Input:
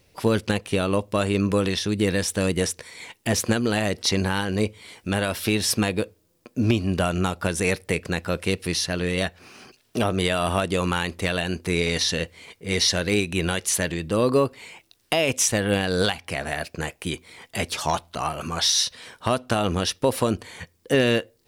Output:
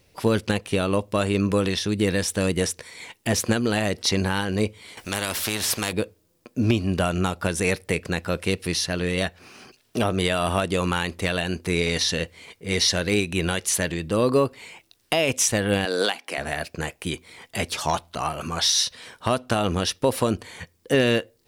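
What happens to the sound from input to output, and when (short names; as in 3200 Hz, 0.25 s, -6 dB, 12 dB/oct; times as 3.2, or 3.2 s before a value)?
4.97–5.93 spectral compressor 2:1
15.85–16.38 HPF 250 Hz 24 dB/oct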